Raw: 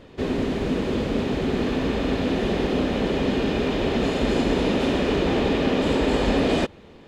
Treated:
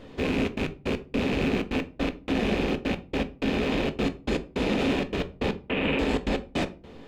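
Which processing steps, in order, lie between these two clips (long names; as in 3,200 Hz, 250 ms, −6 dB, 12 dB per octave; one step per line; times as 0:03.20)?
loose part that buzzes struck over −32 dBFS, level −19 dBFS
0:05.53–0:05.99: high shelf with overshoot 3,900 Hz −13 dB, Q 3
brickwall limiter −17.5 dBFS, peak gain reduction 9.5 dB
gate pattern "xxxxx.x..x.." 158 BPM −60 dB
on a send: convolution reverb RT60 0.35 s, pre-delay 4 ms, DRR 9 dB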